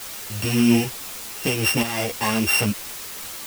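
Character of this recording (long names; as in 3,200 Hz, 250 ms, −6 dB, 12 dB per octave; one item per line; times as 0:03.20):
a buzz of ramps at a fixed pitch in blocks of 16 samples
tremolo saw up 1.1 Hz, depth 60%
a quantiser's noise floor 6 bits, dither triangular
a shimmering, thickened sound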